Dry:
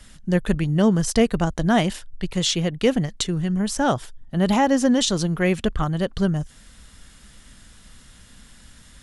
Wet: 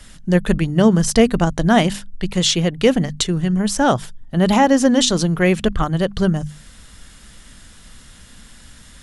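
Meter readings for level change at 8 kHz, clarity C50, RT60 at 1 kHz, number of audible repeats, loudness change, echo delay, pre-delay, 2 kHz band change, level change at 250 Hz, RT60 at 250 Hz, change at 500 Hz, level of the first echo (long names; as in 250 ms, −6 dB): +5.0 dB, no reverb audible, no reverb audible, no echo audible, +4.5 dB, no echo audible, no reverb audible, +5.0 dB, +4.5 dB, no reverb audible, +5.0 dB, no echo audible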